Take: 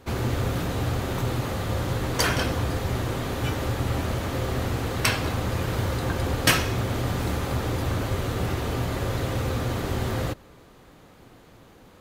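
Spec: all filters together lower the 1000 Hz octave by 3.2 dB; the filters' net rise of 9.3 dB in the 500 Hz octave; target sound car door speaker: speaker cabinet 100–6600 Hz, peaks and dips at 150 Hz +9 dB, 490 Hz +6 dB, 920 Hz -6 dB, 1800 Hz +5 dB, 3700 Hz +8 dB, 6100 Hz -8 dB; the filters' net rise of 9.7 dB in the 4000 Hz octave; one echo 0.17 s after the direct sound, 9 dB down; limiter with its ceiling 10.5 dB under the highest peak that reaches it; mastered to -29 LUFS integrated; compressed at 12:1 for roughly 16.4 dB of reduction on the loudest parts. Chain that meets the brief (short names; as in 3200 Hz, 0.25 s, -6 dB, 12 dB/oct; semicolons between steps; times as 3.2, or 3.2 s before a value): bell 500 Hz +8 dB; bell 1000 Hz -6 dB; bell 4000 Hz +8 dB; compressor 12:1, threshold -29 dBFS; limiter -25.5 dBFS; speaker cabinet 100–6600 Hz, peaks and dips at 150 Hz +9 dB, 490 Hz +6 dB, 920 Hz -6 dB, 1800 Hz +5 dB, 3700 Hz +8 dB, 6100 Hz -8 dB; echo 0.17 s -9 dB; gain +3.5 dB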